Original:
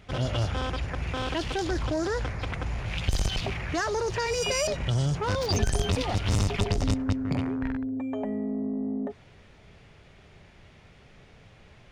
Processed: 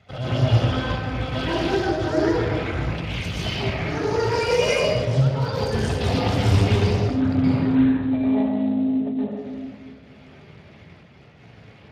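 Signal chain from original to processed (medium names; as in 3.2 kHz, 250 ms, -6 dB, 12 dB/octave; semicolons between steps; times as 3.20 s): 5.05–5.61 s: compressor with a negative ratio -31 dBFS, ratio -0.5; 6.62–8.05 s: de-hum 330.1 Hz, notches 4; trance gate "xxxxxx.x.xxxx.x" 112 bpm -12 dB; reverberation RT60 1.5 s, pre-delay 115 ms, DRR -9 dB; trim -4 dB; Speex 24 kbps 32 kHz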